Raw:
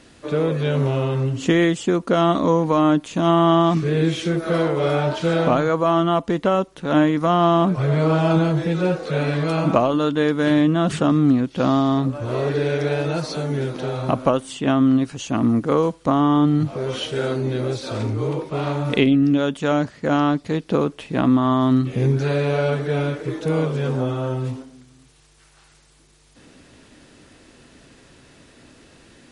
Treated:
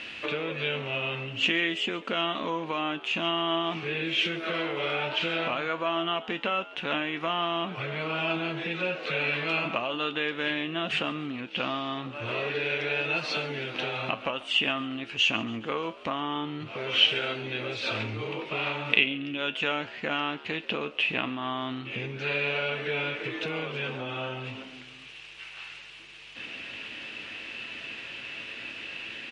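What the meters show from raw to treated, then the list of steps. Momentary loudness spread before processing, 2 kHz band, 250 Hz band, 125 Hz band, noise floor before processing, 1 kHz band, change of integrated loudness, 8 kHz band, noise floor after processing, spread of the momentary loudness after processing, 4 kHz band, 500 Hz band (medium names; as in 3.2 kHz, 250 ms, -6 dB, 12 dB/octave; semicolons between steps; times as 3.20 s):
8 LU, +2.0 dB, -16.5 dB, -18.5 dB, -52 dBFS, -9.5 dB, -9.0 dB, -12.0 dB, -46 dBFS, 12 LU, +4.0 dB, -12.0 dB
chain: compression 4:1, threshold -33 dBFS, peak gain reduction 18 dB; resonant low-pass 2.7 kHz, resonance Q 5.2; tilt EQ +3 dB/octave; feedback comb 110 Hz, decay 0.21 s, harmonics all, mix 60%; on a send: frequency-shifting echo 139 ms, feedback 50%, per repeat +79 Hz, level -19 dB; on the sum: trim +8.5 dB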